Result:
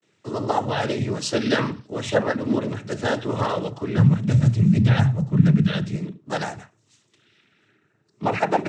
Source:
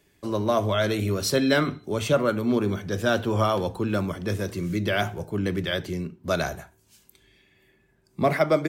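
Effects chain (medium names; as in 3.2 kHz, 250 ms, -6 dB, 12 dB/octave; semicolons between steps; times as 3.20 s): vibrato 0.49 Hz 90 cents; noise-vocoded speech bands 12; 3.97–5.96 s: resonant low shelf 240 Hz +13.5 dB, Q 1.5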